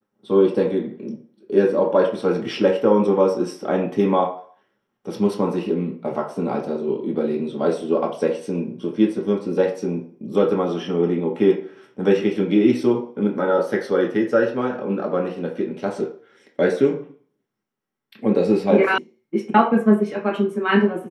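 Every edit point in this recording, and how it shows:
18.98 sound cut off

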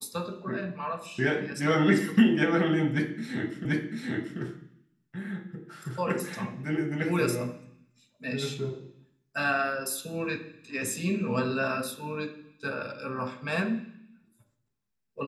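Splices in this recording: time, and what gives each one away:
3.65 repeat of the last 0.74 s

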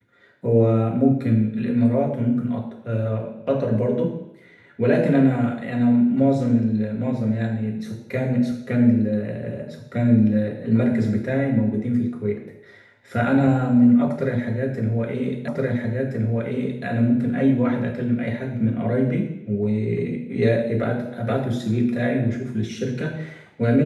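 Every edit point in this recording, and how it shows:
15.48 repeat of the last 1.37 s

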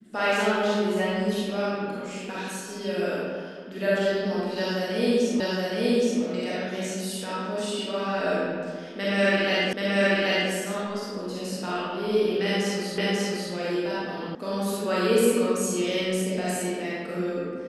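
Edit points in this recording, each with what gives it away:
5.4 repeat of the last 0.82 s
9.73 repeat of the last 0.78 s
12.98 repeat of the last 0.54 s
14.35 sound cut off

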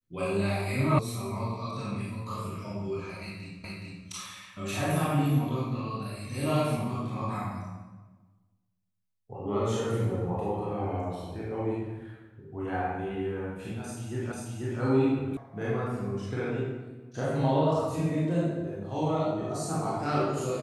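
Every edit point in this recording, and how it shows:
0.99 sound cut off
3.64 repeat of the last 0.42 s
14.32 repeat of the last 0.49 s
15.37 sound cut off

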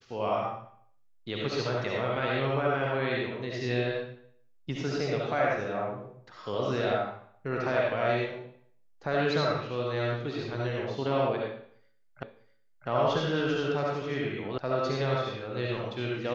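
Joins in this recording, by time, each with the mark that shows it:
12.23 repeat of the last 0.65 s
14.58 sound cut off

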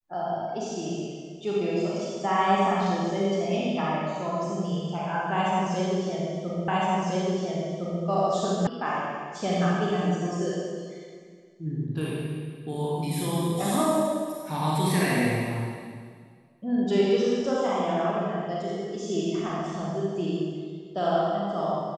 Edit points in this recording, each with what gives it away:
6.68 repeat of the last 1.36 s
8.67 sound cut off

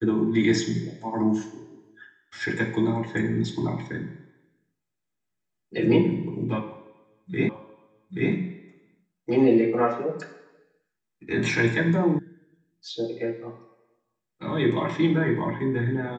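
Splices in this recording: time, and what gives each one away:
7.49 repeat of the last 0.83 s
12.19 sound cut off

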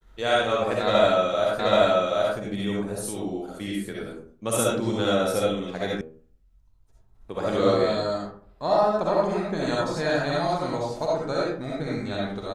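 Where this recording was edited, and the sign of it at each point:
1.59 repeat of the last 0.78 s
6.01 sound cut off

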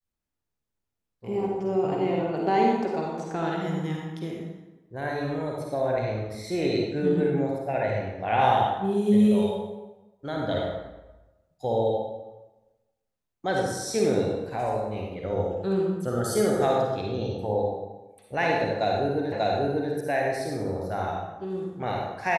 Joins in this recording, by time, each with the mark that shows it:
19.32 repeat of the last 0.59 s

